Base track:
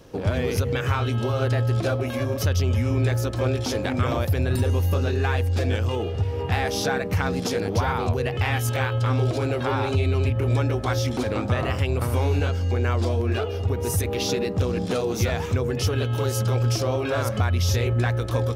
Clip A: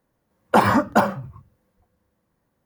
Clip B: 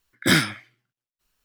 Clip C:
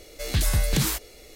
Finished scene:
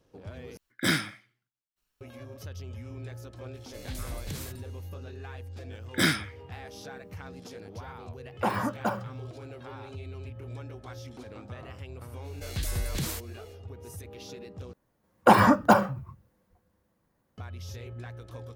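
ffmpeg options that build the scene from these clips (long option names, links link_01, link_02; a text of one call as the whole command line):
ffmpeg -i bed.wav -i cue0.wav -i cue1.wav -i cue2.wav -filter_complex "[2:a]asplit=2[link_01][link_02];[3:a]asplit=2[link_03][link_04];[1:a]asplit=2[link_05][link_06];[0:a]volume=-19dB[link_07];[link_01]aecho=1:1:92|184:0.0841|0.0227[link_08];[link_07]asplit=3[link_09][link_10][link_11];[link_09]atrim=end=0.574[link_12];[link_08]atrim=end=1.44,asetpts=PTS-STARTPTS,volume=-7.5dB[link_13];[link_10]atrim=start=2.006:end=14.734[link_14];[link_06]atrim=end=2.65,asetpts=PTS-STARTPTS,volume=-1.5dB[link_15];[link_11]atrim=start=17.376[link_16];[link_03]atrim=end=1.35,asetpts=PTS-STARTPTS,volume=-15.5dB,afade=type=in:duration=0.004:curve=hsin,afade=type=out:start_time=1.346:duration=0.004:curve=hsin,adelay=3540[link_17];[link_02]atrim=end=1.44,asetpts=PTS-STARTPTS,volume=-6dB,afade=type=in:duration=0.004:curve=hsin,afade=type=out:start_time=1.436:duration=0.004:curve=hsin,adelay=5720[link_18];[link_05]atrim=end=2.65,asetpts=PTS-STARTPTS,volume=-12dB,afade=type=in:duration=0.004:curve=hsin,afade=type=out:start_time=2.646:duration=0.004:curve=hsin,adelay=7890[link_19];[link_04]atrim=end=1.35,asetpts=PTS-STARTPTS,volume=-9dB,afade=type=in:duration=0.05,afade=type=out:start_time=1.3:duration=0.05,adelay=12220[link_20];[link_12][link_13]acrossfade=duration=0.004:curve1=hsin:curve2=hsin[link_21];[link_21][link_14]acrossfade=duration=0.004:curve1=hsin:curve2=hsin[link_22];[link_22][link_15]acrossfade=duration=0.004:curve1=hsin:curve2=hsin[link_23];[link_23][link_16]acrossfade=duration=0.004:curve1=hsin:curve2=hsin[link_24];[link_24][link_17][link_18][link_19][link_20]amix=inputs=5:normalize=0" out.wav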